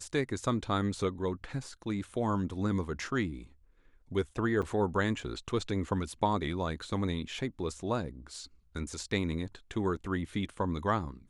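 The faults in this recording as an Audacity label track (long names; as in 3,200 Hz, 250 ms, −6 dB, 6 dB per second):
4.620000	4.630000	drop-out 6.3 ms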